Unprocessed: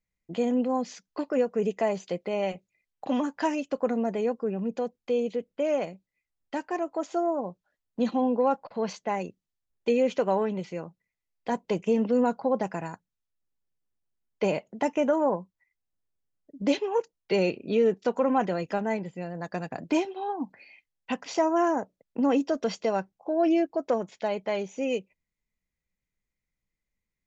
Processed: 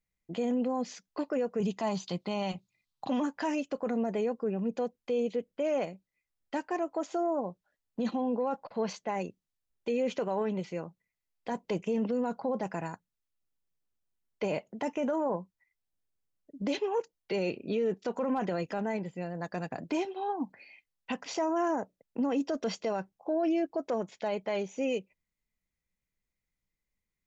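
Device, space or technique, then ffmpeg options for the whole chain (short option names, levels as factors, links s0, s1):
clipper into limiter: -filter_complex "[0:a]asettb=1/sr,asplit=3[s0][s1][s2];[s0]atrim=end=1.604[s3];[s1]atrim=start=1.6:end=3.09,asetpts=PTS-STARTPTS,afade=t=in:d=0.004:c=qsin,afade=t=out:st=1.486:d=0.004:c=qsin,equalizer=f=125:t=o:w=1:g=8,equalizer=f=250:t=o:w=1:g=3,equalizer=f=500:t=o:w=1:g=-10,equalizer=f=1000:t=o:w=1:g=8,equalizer=f=2000:t=o:w=1:g=-7,equalizer=f=4000:t=o:w=1:g=11[s4];[s2]atrim=start=3.086[s5];[s3][s4]acrossfade=d=0.004:c1=hsin:c2=qsin[s6];[s6][s5]acrossfade=d=0.004:c1=qsin:c2=hsin,asoftclip=type=hard:threshold=0.2,alimiter=limit=0.0891:level=0:latency=1:release=14,volume=0.841"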